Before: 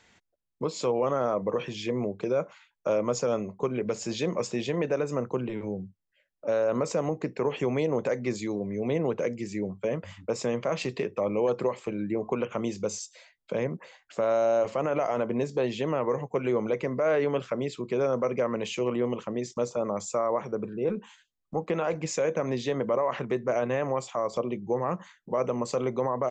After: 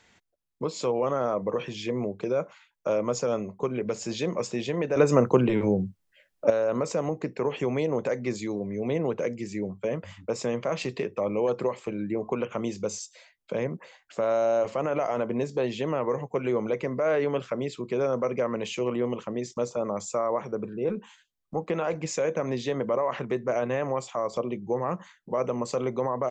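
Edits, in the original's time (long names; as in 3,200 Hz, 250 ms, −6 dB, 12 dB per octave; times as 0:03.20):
0:04.96–0:06.50: clip gain +9.5 dB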